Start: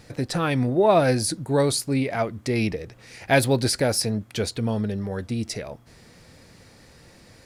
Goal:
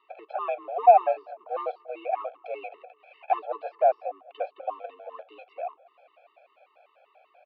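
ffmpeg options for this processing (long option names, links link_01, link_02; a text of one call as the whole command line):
ffmpeg -i in.wav -filter_complex "[0:a]asplit=2[link_01][link_02];[link_02]acrusher=bits=6:dc=4:mix=0:aa=0.000001,volume=-9dB[link_03];[link_01][link_03]amix=inputs=2:normalize=0,asoftclip=type=hard:threshold=-13.5dB,acrossover=split=850|1600[link_04][link_05][link_06];[link_06]acompressor=threshold=-37dB:ratio=6[link_07];[link_04][link_05][link_07]amix=inputs=3:normalize=0,highpass=frequency=400:width_type=q:width=0.5412,highpass=frequency=400:width_type=q:width=1.307,lowpass=frequency=3400:width_type=q:width=0.5176,lowpass=frequency=3400:width_type=q:width=0.7071,lowpass=frequency=3400:width_type=q:width=1.932,afreqshift=70,asplit=3[link_08][link_09][link_10];[link_08]bandpass=frequency=730:width_type=q:width=8,volume=0dB[link_11];[link_09]bandpass=frequency=1090:width_type=q:width=8,volume=-6dB[link_12];[link_10]bandpass=frequency=2440:width_type=q:width=8,volume=-9dB[link_13];[link_11][link_12][link_13]amix=inputs=3:normalize=0,asplit=2[link_14][link_15];[link_15]adelay=217,lowpass=frequency=1700:poles=1,volume=-23dB,asplit=2[link_16][link_17];[link_17]adelay=217,lowpass=frequency=1700:poles=1,volume=0.54,asplit=2[link_18][link_19];[link_19]adelay=217,lowpass=frequency=1700:poles=1,volume=0.54,asplit=2[link_20][link_21];[link_21]adelay=217,lowpass=frequency=1700:poles=1,volume=0.54[link_22];[link_14][link_16][link_18][link_20][link_22]amix=inputs=5:normalize=0,afftfilt=real='re*gt(sin(2*PI*5.1*pts/sr)*(1-2*mod(floor(b*sr/1024/440),2)),0)':imag='im*gt(sin(2*PI*5.1*pts/sr)*(1-2*mod(floor(b*sr/1024/440),2)),0)':win_size=1024:overlap=0.75,volume=7.5dB" out.wav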